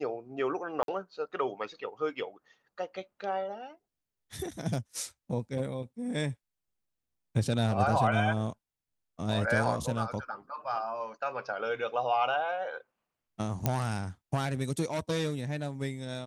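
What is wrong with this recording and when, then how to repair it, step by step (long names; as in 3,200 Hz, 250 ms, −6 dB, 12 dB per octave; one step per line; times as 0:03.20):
0:00.83–0:00.88: drop-out 52 ms
0:13.66: click −12 dBFS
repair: click removal
repair the gap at 0:00.83, 52 ms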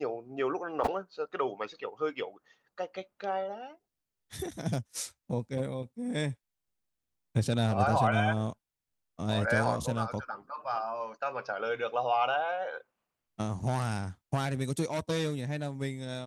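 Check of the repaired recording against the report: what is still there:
none of them is left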